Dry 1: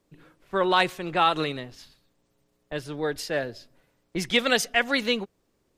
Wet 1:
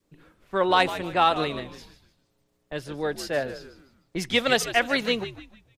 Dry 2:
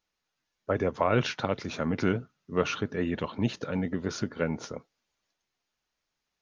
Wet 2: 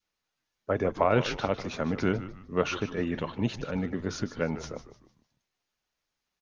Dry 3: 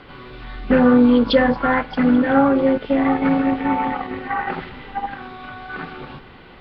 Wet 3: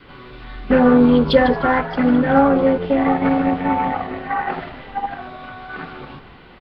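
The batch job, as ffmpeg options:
-filter_complex "[0:a]adynamicequalizer=threshold=0.0251:dfrequency=690:dqfactor=1.7:tfrequency=690:tqfactor=1.7:attack=5:release=100:ratio=0.375:range=2:mode=boostabove:tftype=bell,aeval=exprs='0.891*(cos(1*acos(clip(val(0)/0.891,-1,1)))-cos(1*PI/2))+0.0141*(cos(7*acos(clip(val(0)/0.891,-1,1)))-cos(7*PI/2))':c=same,asplit=2[s0][s1];[s1]asplit=4[s2][s3][s4][s5];[s2]adelay=151,afreqshift=-92,volume=0.224[s6];[s3]adelay=302,afreqshift=-184,volume=0.0804[s7];[s4]adelay=453,afreqshift=-276,volume=0.0292[s8];[s5]adelay=604,afreqshift=-368,volume=0.0105[s9];[s6][s7][s8][s9]amix=inputs=4:normalize=0[s10];[s0][s10]amix=inputs=2:normalize=0"

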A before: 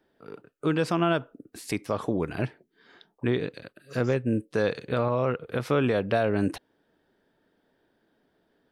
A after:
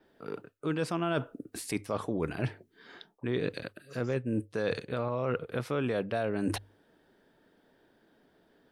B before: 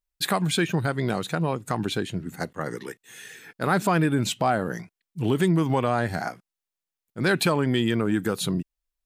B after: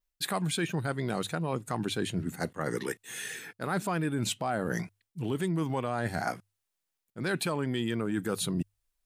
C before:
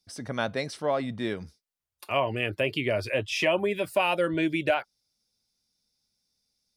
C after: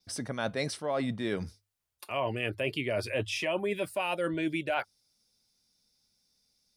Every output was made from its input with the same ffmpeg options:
-af "bandreject=f=50:t=h:w=6,bandreject=f=100:t=h:w=6,adynamicequalizer=threshold=0.00158:dfrequency=9400:dqfactor=2.3:tfrequency=9400:tqfactor=2.3:attack=5:release=100:ratio=0.375:range=2.5:mode=boostabove:tftype=bell,areverse,acompressor=threshold=0.0251:ratio=6,areverse,volume=1.58"

